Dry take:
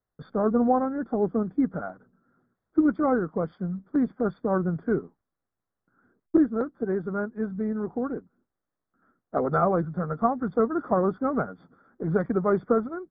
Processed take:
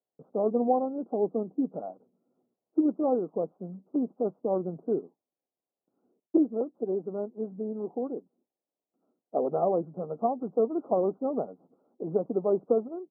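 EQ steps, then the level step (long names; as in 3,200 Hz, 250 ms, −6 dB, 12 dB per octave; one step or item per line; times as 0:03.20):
high-pass filter 320 Hz 12 dB per octave
inverse Chebyshev low-pass filter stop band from 1,600 Hz, stop band 40 dB
0.0 dB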